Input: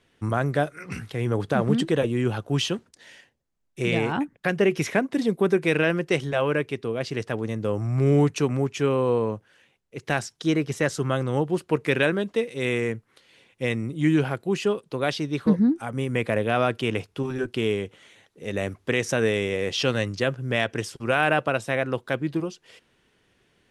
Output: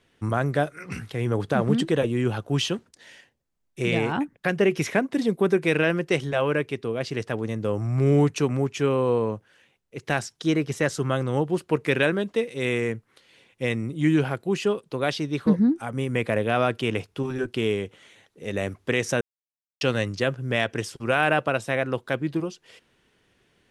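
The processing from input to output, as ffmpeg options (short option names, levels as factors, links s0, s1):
-filter_complex "[0:a]asplit=3[s0][s1][s2];[s0]atrim=end=19.21,asetpts=PTS-STARTPTS,afade=t=out:st=19.206:d=0.004:c=hsin[s3];[s1]atrim=start=19.21:end=19.81,asetpts=PTS-STARTPTS,volume=0[s4];[s2]atrim=start=19.81,asetpts=PTS-STARTPTS,afade=t=in:d=0.004:c=hsin[s5];[s3][s4][s5]concat=n=3:v=0:a=1"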